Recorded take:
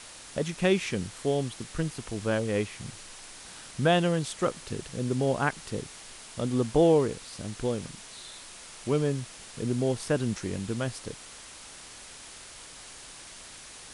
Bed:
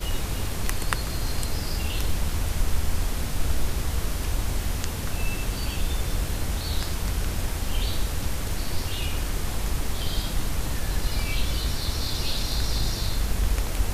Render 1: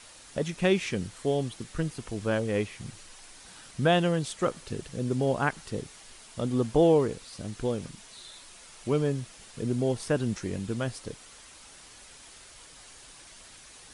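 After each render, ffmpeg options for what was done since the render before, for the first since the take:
-af "afftdn=nr=6:nf=-47"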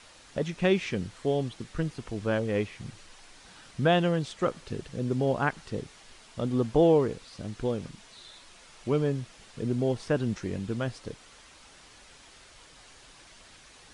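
-filter_complex "[0:a]acrossover=split=7800[a][b];[b]acompressor=threshold=-60dB:ratio=4:attack=1:release=60[c];[a][c]amix=inputs=2:normalize=0,highshelf=f=7k:g=-8"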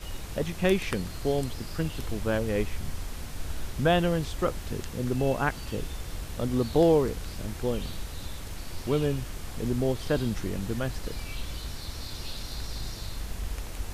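-filter_complex "[1:a]volume=-10dB[a];[0:a][a]amix=inputs=2:normalize=0"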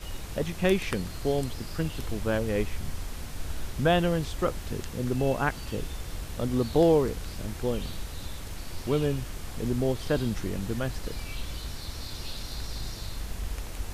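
-af anull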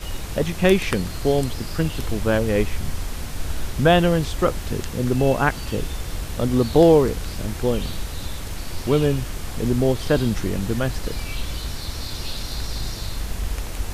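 -af "volume=7.5dB"

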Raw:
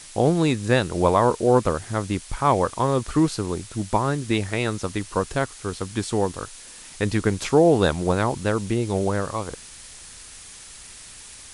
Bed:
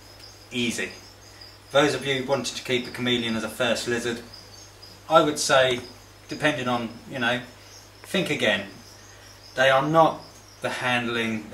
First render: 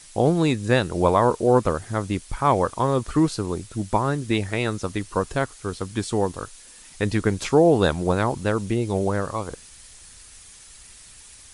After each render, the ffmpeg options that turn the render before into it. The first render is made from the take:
-af "afftdn=nr=6:nf=-43"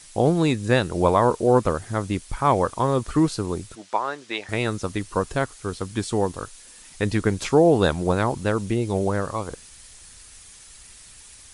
-filter_complex "[0:a]asettb=1/sr,asplit=3[a][b][c];[a]atrim=end=3.754[d];[b]atrim=start=3.75:end=4.49,asetpts=PTS-STARTPTS,afade=t=in:d=0.004:c=qsin,afade=t=out:st=0.736:d=0.004:c=qsin,highpass=600,lowpass=5.5k[e];[c]atrim=start=4.486[f];[d][e]acrossfade=d=0.004:c1=hsin:c2=qsin[g];[g][f]acrossfade=d=0.004:c1=qsin:c2=hsin"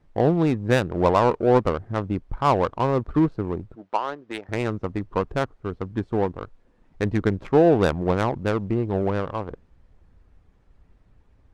-af "adynamicsmooth=sensitivity=1:basefreq=640"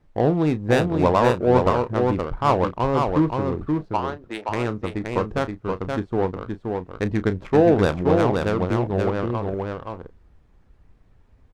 -filter_complex "[0:a]asplit=2[a][b];[b]adelay=33,volume=-13dB[c];[a][c]amix=inputs=2:normalize=0,aecho=1:1:524:0.631"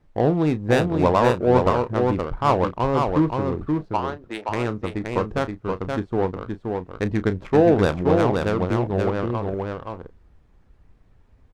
-af anull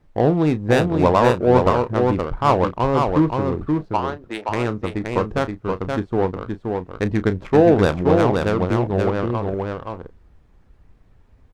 -af "volume=2.5dB,alimiter=limit=-2dB:level=0:latency=1"

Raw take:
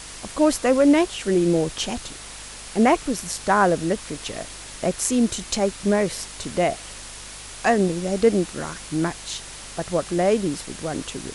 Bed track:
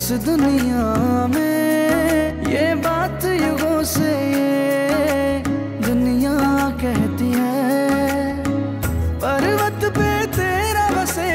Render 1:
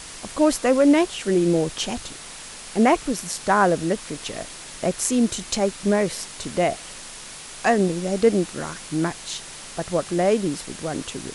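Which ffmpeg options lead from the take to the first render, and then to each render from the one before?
-af "bandreject=f=50:t=h:w=4,bandreject=f=100:t=h:w=4"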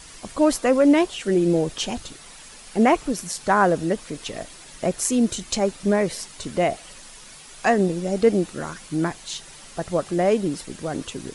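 -af "afftdn=nr=8:nf=-39"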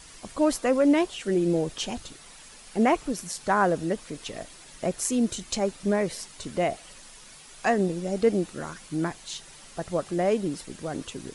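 -af "volume=-4.5dB"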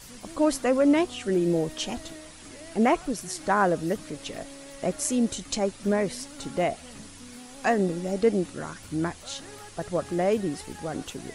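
-filter_complex "[1:a]volume=-28dB[a];[0:a][a]amix=inputs=2:normalize=0"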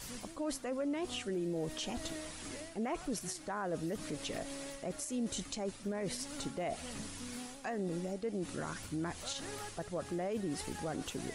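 -af "areverse,acompressor=threshold=-30dB:ratio=12,areverse,alimiter=level_in=5dB:limit=-24dB:level=0:latency=1:release=102,volume=-5dB"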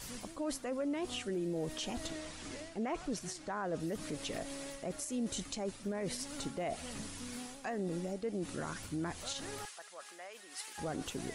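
-filter_complex "[0:a]asettb=1/sr,asplit=3[a][b][c];[a]atrim=end=2.074[d];[b]atrim=start=2.07:end=3.8,asetpts=PTS-STARTPTS,afade=t=in:d=0.004:c=qsin,afade=t=out:st=1.726:d=0.004:c=qsin,lowpass=8k[e];[c]atrim=start=3.796[f];[d][e]acrossfade=d=0.004:c1=hsin:c2=qsin[g];[g][f]acrossfade=d=0.004:c1=qsin:c2=hsin,asettb=1/sr,asplit=3[h][i][j];[h]atrim=end=9.654[k];[i]atrim=start=9.65:end=10.78,asetpts=PTS-STARTPTS,afade=t=in:d=0.004:c=qsin,afade=t=out:st=1.126:d=0.004:c=qsin,highpass=1.2k[l];[j]atrim=start=10.776[m];[k][l]acrossfade=d=0.004:c1=hsin:c2=qsin[n];[n][m]acrossfade=d=0.004:c1=qsin:c2=hsin"

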